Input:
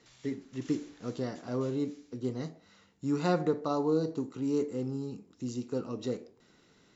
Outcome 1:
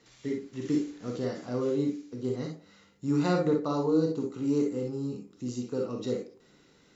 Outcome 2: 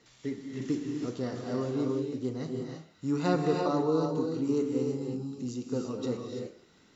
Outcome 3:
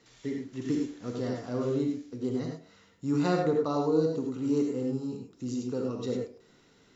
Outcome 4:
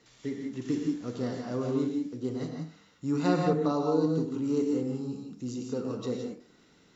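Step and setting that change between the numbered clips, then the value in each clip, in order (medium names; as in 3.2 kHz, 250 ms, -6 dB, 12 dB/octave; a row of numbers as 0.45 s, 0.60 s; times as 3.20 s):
gated-style reverb, gate: 80 ms, 360 ms, 120 ms, 200 ms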